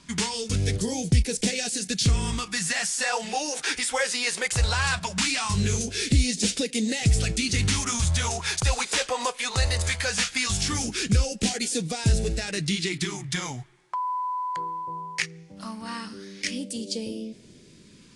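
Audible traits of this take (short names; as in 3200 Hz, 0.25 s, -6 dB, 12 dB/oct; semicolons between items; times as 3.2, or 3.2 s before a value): a quantiser's noise floor 12-bit, dither none; phasing stages 2, 0.19 Hz, lowest notch 200–1100 Hz; AAC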